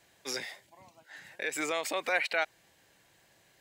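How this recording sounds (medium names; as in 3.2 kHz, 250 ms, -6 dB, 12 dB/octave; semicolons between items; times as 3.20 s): noise floor -66 dBFS; spectral tilt -1.0 dB/octave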